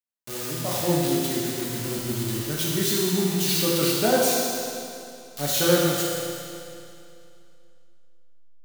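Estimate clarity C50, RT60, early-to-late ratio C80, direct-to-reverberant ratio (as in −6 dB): −1.5 dB, 2.6 s, −0.5 dB, −5.5 dB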